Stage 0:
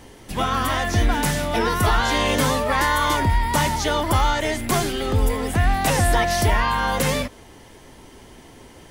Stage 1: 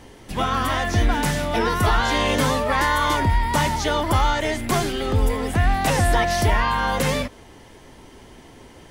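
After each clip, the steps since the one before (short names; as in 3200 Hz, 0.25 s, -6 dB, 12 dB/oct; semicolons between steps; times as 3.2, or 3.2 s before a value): high shelf 8000 Hz -6 dB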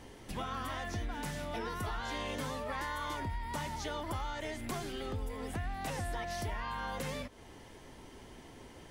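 compressor 3:1, threshold -32 dBFS, peak gain reduction 13.5 dB; gain -7 dB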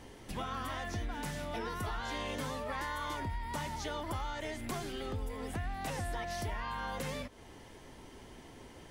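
nothing audible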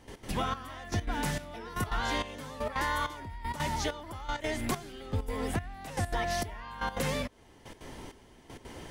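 step gate ".x.xxxx...." 196 bpm -12 dB; gain +7.5 dB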